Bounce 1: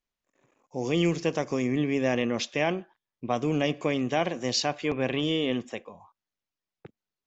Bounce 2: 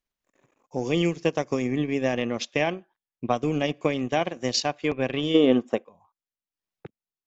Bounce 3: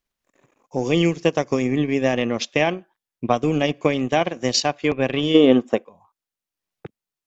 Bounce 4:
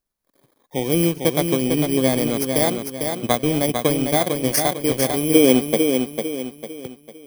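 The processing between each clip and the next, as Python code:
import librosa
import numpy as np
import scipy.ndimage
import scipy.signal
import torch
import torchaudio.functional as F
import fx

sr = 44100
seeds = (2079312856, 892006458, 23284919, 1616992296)

y1 = fx.spec_box(x, sr, start_s=5.35, length_s=0.49, low_hz=210.0, high_hz=1600.0, gain_db=9)
y1 = fx.transient(y1, sr, attack_db=5, sustain_db=-9)
y2 = fx.wow_flutter(y1, sr, seeds[0], rate_hz=2.1, depth_cents=22.0)
y2 = y2 * librosa.db_to_amplitude(5.0)
y3 = fx.bit_reversed(y2, sr, seeds[1], block=16)
y3 = fx.echo_feedback(y3, sr, ms=450, feedback_pct=39, wet_db=-5.5)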